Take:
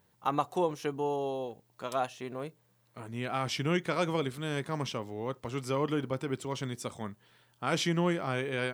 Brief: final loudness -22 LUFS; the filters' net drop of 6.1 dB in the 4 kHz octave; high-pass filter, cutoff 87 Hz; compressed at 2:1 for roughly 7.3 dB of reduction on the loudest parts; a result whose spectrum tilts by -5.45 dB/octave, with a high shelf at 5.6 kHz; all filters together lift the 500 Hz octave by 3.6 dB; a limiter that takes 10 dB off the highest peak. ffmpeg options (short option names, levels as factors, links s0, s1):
-af "highpass=87,equalizer=f=500:t=o:g=4.5,equalizer=f=4000:t=o:g=-7,highshelf=f=5600:g=-4.5,acompressor=threshold=0.0178:ratio=2,volume=7.94,alimiter=limit=0.299:level=0:latency=1"